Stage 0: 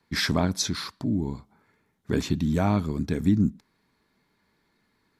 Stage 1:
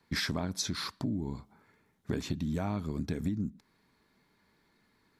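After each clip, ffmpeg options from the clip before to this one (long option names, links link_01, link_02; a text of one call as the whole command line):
ffmpeg -i in.wav -af "acompressor=threshold=-29dB:ratio=12" out.wav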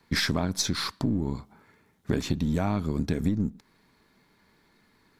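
ffmpeg -i in.wav -af "aeval=exprs='if(lt(val(0),0),0.708*val(0),val(0))':channel_layout=same,volume=7.5dB" out.wav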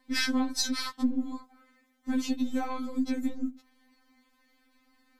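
ffmpeg -i in.wav -af "afftfilt=real='re*3.46*eq(mod(b,12),0)':imag='im*3.46*eq(mod(b,12),0)':win_size=2048:overlap=0.75" out.wav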